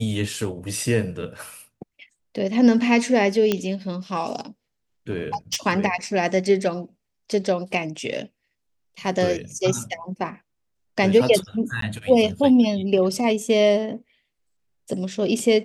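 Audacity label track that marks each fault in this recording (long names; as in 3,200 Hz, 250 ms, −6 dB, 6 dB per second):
3.520000	3.520000	click −7 dBFS
5.100000	5.560000	clipping −19.5 dBFS
11.810000	11.820000	drop-out 13 ms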